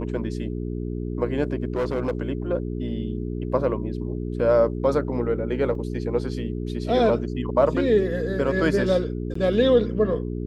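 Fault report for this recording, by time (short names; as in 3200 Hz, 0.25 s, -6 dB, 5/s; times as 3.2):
hum 60 Hz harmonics 7 -29 dBFS
1.75–2.13 clipped -20 dBFS
5.75 gap 2.2 ms
9.34–9.35 gap 14 ms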